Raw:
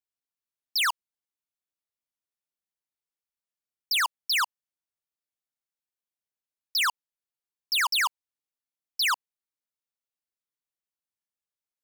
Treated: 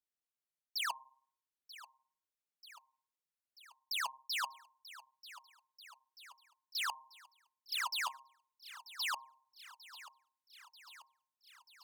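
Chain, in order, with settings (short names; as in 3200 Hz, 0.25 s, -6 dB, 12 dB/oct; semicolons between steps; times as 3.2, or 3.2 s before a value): de-hum 133 Hz, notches 8; reverse; compressor 6:1, threshold -34 dBFS, peak gain reduction 9 dB; reverse; flange 1.3 Hz, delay 1.9 ms, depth 7.1 ms, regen -19%; added harmonics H 7 -37 dB, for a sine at -26.5 dBFS; on a send: thinning echo 0.937 s, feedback 68%, high-pass 380 Hz, level -16 dB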